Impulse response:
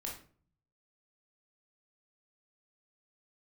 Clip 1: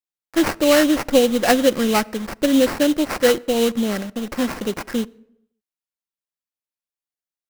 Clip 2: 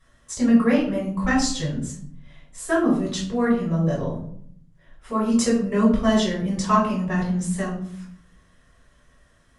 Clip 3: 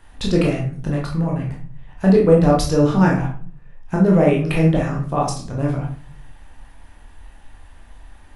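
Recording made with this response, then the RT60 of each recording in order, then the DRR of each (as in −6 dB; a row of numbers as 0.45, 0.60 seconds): 3; non-exponential decay, 0.60 s, 0.45 s; 13.0, −6.0, −2.5 decibels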